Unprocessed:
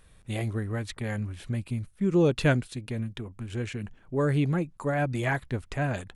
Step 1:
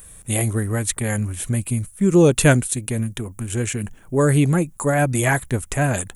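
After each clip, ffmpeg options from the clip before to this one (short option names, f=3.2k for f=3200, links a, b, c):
-af "aexciter=amount=8.7:drive=3.4:freq=6.6k,volume=8.5dB"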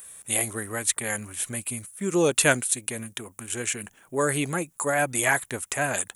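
-af "highpass=f=860:p=1"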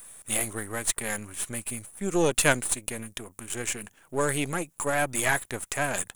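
-af "aeval=exprs='if(lt(val(0),0),0.447*val(0),val(0))':c=same"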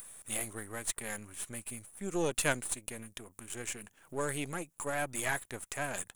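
-af "acompressor=mode=upward:threshold=-34dB:ratio=2.5,volume=-8.5dB"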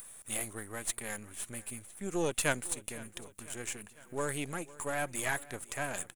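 -af "aecho=1:1:503|1006|1509|2012|2515:0.1|0.059|0.0348|0.0205|0.0121"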